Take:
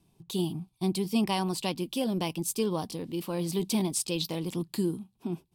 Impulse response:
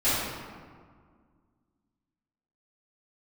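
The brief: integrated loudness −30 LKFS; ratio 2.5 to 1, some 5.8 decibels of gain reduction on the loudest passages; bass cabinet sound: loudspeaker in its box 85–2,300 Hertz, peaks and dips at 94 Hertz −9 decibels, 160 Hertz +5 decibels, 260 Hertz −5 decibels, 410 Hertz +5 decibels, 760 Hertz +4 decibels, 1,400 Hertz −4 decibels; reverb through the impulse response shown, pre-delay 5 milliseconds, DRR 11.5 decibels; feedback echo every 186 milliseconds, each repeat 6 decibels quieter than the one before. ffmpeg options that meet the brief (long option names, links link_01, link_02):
-filter_complex "[0:a]acompressor=threshold=-31dB:ratio=2.5,aecho=1:1:186|372|558|744|930|1116:0.501|0.251|0.125|0.0626|0.0313|0.0157,asplit=2[link_01][link_02];[1:a]atrim=start_sample=2205,adelay=5[link_03];[link_02][link_03]afir=irnorm=-1:irlink=0,volume=-26dB[link_04];[link_01][link_04]amix=inputs=2:normalize=0,highpass=frequency=85:width=0.5412,highpass=frequency=85:width=1.3066,equalizer=frequency=94:width_type=q:width=4:gain=-9,equalizer=frequency=160:width_type=q:width=4:gain=5,equalizer=frequency=260:width_type=q:width=4:gain=-5,equalizer=frequency=410:width_type=q:width=4:gain=5,equalizer=frequency=760:width_type=q:width=4:gain=4,equalizer=frequency=1400:width_type=q:width=4:gain=-4,lowpass=frequency=2300:width=0.5412,lowpass=frequency=2300:width=1.3066,volume=2.5dB"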